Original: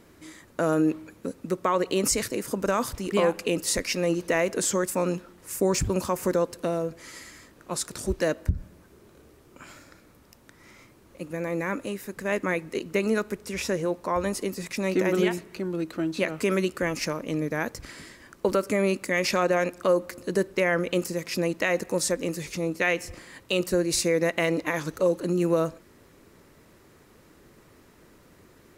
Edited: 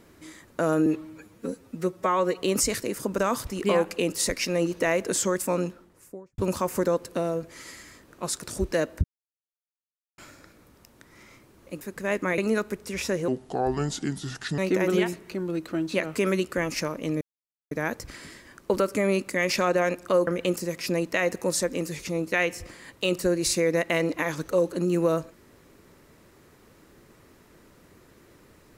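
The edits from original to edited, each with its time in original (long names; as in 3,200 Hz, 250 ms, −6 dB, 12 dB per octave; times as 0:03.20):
0:00.86–0:01.90: time-stretch 1.5×
0:04.96–0:05.86: fade out and dull
0:08.52–0:09.66: silence
0:11.29–0:12.02: remove
0:12.59–0:12.98: remove
0:13.88–0:14.83: play speed 73%
0:17.46: splice in silence 0.50 s
0:20.02–0:20.75: remove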